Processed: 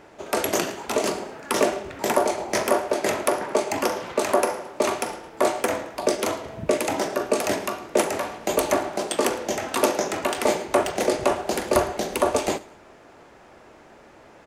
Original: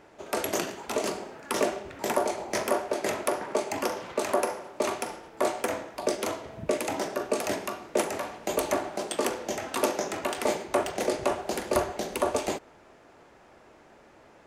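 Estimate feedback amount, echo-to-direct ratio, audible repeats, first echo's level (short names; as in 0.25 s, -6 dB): 33%, -21.5 dB, 2, -22.0 dB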